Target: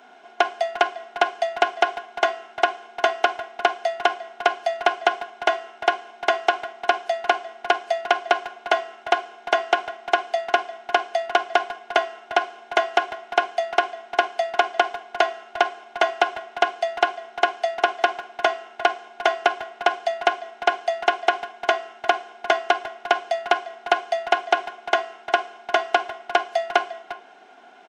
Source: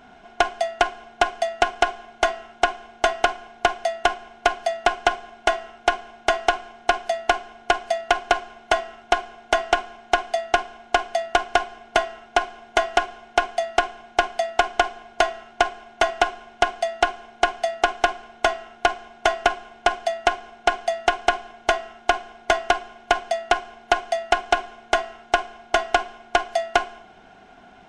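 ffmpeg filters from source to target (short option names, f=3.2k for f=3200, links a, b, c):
-filter_complex "[0:a]acrossover=split=5700[a][b];[b]acompressor=threshold=-53dB:ratio=4:attack=1:release=60[c];[a][c]amix=inputs=2:normalize=0,highpass=f=300:w=0.5412,highpass=f=300:w=1.3066,asplit=2[d][e];[e]adelay=350,highpass=300,lowpass=3.4k,asoftclip=type=hard:threshold=-11dB,volume=-13dB[f];[d][f]amix=inputs=2:normalize=0"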